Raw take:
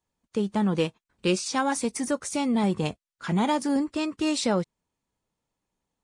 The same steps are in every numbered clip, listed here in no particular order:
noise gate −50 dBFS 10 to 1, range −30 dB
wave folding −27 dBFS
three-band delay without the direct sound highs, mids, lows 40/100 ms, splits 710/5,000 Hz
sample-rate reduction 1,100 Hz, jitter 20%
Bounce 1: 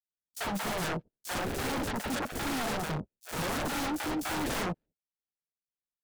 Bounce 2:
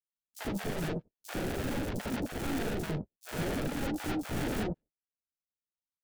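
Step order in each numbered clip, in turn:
noise gate, then sample-rate reduction, then three-band delay without the direct sound, then wave folding
wave folding, then noise gate, then sample-rate reduction, then three-band delay without the direct sound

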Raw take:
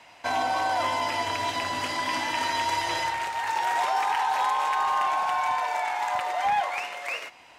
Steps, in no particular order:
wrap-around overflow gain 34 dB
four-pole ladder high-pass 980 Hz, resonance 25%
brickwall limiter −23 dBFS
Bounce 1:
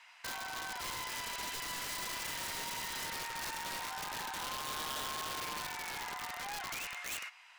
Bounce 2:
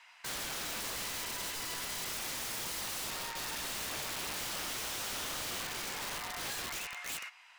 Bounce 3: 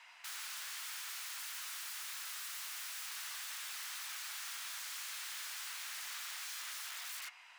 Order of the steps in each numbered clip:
brickwall limiter, then four-pole ladder high-pass, then wrap-around overflow
four-pole ladder high-pass, then brickwall limiter, then wrap-around overflow
brickwall limiter, then wrap-around overflow, then four-pole ladder high-pass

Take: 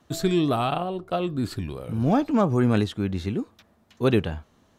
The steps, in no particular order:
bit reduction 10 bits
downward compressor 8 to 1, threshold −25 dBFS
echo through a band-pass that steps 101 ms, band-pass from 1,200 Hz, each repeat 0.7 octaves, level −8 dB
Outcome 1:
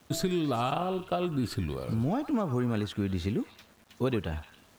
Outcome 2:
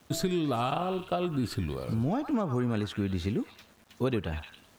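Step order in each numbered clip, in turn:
downward compressor, then bit reduction, then echo through a band-pass that steps
bit reduction, then echo through a band-pass that steps, then downward compressor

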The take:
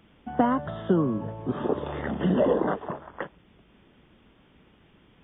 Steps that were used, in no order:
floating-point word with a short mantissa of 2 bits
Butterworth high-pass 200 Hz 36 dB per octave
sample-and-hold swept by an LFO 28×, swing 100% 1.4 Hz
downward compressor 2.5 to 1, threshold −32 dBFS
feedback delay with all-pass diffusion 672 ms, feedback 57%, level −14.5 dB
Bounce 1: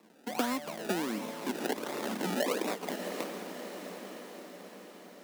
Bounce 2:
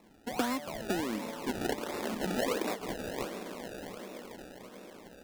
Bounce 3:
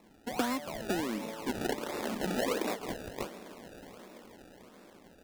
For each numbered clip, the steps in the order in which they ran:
sample-and-hold swept by an LFO, then feedback delay with all-pass diffusion, then downward compressor, then Butterworth high-pass, then floating-point word with a short mantissa
feedback delay with all-pass diffusion, then downward compressor, then floating-point word with a short mantissa, then Butterworth high-pass, then sample-and-hold swept by an LFO
downward compressor, then feedback delay with all-pass diffusion, then floating-point word with a short mantissa, then Butterworth high-pass, then sample-and-hold swept by an LFO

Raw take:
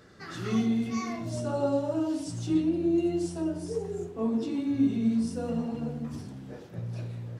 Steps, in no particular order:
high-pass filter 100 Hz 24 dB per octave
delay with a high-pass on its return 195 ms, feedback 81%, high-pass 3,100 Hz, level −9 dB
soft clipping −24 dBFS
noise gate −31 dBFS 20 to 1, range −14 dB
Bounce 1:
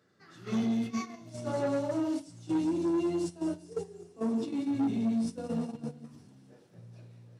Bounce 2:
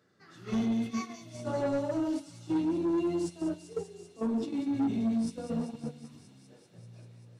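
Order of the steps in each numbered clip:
delay with a high-pass on its return, then noise gate, then soft clipping, then high-pass filter
high-pass filter, then noise gate, then delay with a high-pass on its return, then soft clipping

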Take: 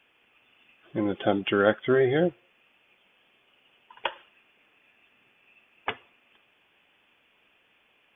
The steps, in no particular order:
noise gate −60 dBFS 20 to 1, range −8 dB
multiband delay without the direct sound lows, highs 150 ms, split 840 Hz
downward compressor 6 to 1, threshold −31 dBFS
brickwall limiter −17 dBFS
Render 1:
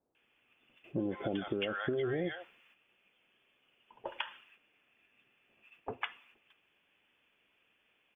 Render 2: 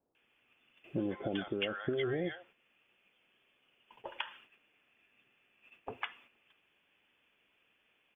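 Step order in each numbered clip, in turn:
noise gate, then brickwall limiter, then multiband delay without the direct sound, then downward compressor
brickwall limiter, then downward compressor, then multiband delay without the direct sound, then noise gate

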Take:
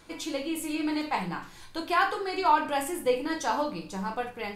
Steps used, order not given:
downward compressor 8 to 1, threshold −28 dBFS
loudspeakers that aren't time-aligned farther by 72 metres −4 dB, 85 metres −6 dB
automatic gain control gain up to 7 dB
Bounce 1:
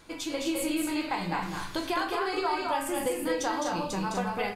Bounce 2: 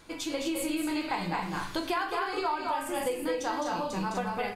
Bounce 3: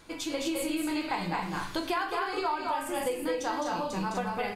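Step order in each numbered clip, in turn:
automatic gain control, then downward compressor, then loudspeakers that aren't time-aligned
automatic gain control, then loudspeakers that aren't time-aligned, then downward compressor
loudspeakers that aren't time-aligned, then automatic gain control, then downward compressor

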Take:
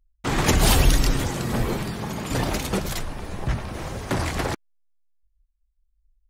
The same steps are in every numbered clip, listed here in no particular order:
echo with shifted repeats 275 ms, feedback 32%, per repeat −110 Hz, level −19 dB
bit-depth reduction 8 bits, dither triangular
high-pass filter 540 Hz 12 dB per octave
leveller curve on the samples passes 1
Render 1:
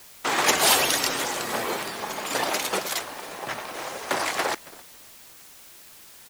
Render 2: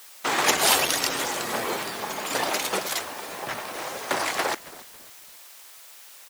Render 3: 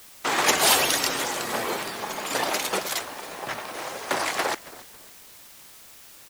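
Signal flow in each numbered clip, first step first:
high-pass filter, then echo with shifted repeats, then leveller curve on the samples, then bit-depth reduction
bit-depth reduction, then leveller curve on the samples, then high-pass filter, then echo with shifted repeats
high-pass filter, then leveller curve on the samples, then bit-depth reduction, then echo with shifted repeats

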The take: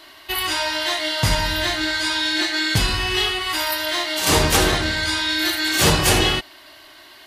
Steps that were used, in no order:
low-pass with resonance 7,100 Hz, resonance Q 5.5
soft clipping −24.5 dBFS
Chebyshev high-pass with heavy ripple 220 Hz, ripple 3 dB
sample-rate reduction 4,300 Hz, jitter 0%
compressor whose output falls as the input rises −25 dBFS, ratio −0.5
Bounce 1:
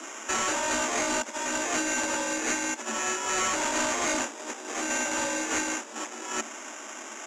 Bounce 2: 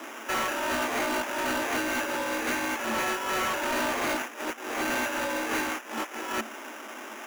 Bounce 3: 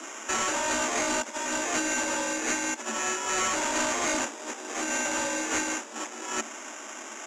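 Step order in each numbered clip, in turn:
sample-rate reduction, then compressor whose output falls as the input rises, then Chebyshev high-pass with heavy ripple, then soft clipping, then low-pass with resonance
low-pass with resonance, then sample-rate reduction, then Chebyshev high-pass with heavy ripple, then compressor whose output falls as the input rises, then soft clipping
compressor whose output falls as the input rises, then sample-rate reduction, then Chebyshev high-pass with heavy ripple, then soft clipping, then low-pass with resonance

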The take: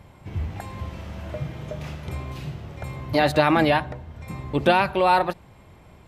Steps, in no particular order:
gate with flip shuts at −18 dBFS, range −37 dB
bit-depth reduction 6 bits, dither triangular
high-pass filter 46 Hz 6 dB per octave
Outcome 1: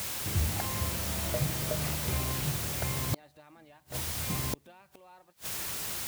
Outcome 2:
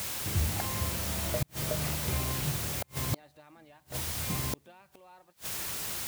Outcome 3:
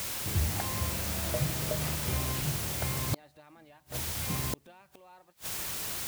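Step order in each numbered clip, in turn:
bit-depth reduction, then gate with flip, then high-pass filter
bit-depth reduction, then high-pass filter, then gate with flip
high-pass filter, then bit-depth reduction, then gate with flip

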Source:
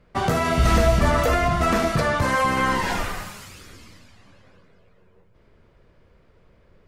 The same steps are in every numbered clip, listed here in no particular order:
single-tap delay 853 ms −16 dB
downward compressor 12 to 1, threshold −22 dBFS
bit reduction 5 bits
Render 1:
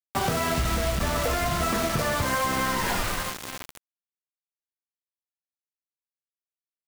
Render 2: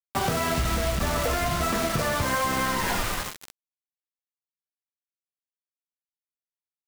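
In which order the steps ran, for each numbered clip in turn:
single-tap delay, then downward compressor, then bit reduction
downward compressor, then single-tap delay, then bit reduction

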